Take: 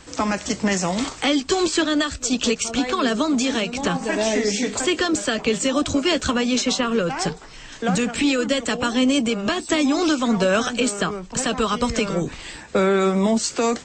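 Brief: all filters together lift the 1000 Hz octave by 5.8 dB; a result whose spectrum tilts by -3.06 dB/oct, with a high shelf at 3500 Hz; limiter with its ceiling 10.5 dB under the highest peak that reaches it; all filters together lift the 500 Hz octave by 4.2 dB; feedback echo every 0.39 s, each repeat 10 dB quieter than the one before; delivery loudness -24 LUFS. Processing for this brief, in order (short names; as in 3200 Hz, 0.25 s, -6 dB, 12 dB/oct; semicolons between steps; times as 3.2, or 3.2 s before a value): bell 500 Hz +3.5 dB; bell 1000 Hz +6 dB; high shelf 3500 Hz +6 dB; limiter -14.5 dBFS; feedback echo 0.39 s, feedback 32%, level -10 dB; gain -1 dB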